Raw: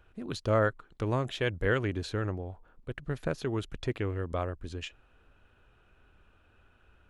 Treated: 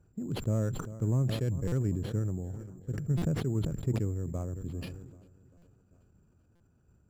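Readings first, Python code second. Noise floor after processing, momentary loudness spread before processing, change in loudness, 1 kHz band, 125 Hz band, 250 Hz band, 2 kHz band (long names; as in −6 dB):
−66 dBFS, 13 LU, 0.0 dB, −12.0 dB, +4.5 dB, +2.0 dB, −14.5 dB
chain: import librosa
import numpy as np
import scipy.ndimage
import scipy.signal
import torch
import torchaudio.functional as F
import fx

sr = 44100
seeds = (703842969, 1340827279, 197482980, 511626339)

p1 = fx.echo_feedback(x, sr, ms=394, feedback_pct=58, wet_db=-22.0)
p2 = fx.level_steps(p1, sr, step_db=10)
p3 = p1 + (p2 * librosa.db_to_amplitude(-0.5))
p4 = 10.0 ** (-17.0 / 20.0) * np.tanh(p3 / 10.0 ** (-17.0 / 20.0))
p5 = (np.kron(p4[::6], np.eye(6)[0]) * 6)[:len(p4)]
p6 = fx.bandpass_q(p5, sr, hz=150.0, q=1.6)
p7 = fx.buffer_glitch(p6, sr, at_s=(1.67, 3.17, 5.57, 6.55), block=256, repeats=8)
p8 = fx.sustainer(p7, sr, db_per_s=44.0)
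y = p8 * librosa.db_to_amplitude(3.0)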